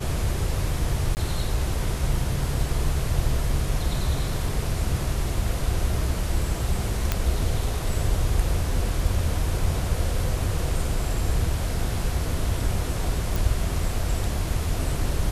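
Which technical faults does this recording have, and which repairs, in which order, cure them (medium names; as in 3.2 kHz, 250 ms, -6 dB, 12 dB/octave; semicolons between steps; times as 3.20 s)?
1.15–1.17 s: dropout 19 ms
7.12 s: pop -7 dBFS
13.36 s: pop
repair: de-click; interpolate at 1.15 s, 19 ms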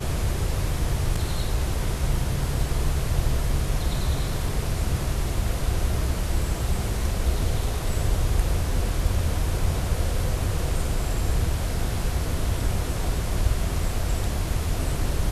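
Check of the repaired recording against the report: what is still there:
nothing left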